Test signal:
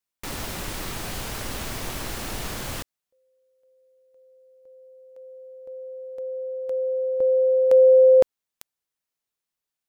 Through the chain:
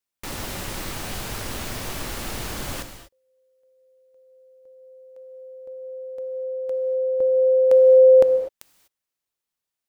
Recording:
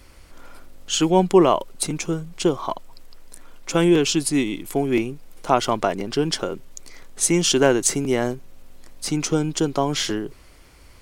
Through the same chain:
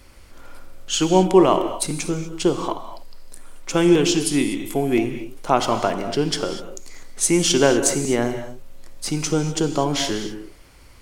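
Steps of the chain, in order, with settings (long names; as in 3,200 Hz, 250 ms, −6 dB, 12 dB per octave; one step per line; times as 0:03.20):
reverb whose tail is shaped and stops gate 270 ms flat, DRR 7.5 dB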